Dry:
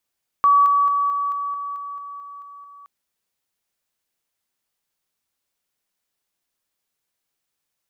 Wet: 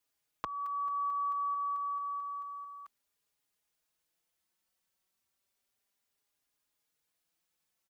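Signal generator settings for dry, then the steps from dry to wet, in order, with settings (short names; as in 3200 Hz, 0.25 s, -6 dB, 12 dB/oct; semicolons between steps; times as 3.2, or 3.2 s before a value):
level ladder 1140 Hz -11 dBFS, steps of -3 dB, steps 11, 0.22 s 0.00 s
compressor 2:1, threshold -36 dBFS; endless flanger 4.4 ms +0.31 Hz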